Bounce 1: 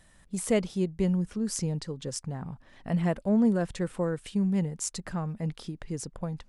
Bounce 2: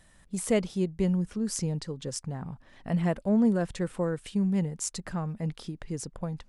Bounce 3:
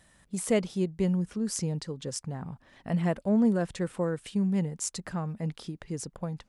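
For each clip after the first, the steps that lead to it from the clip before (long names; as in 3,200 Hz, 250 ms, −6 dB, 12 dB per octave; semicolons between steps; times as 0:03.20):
no processing that can be heard
high-pass filter 70 Hz 6 dB per octave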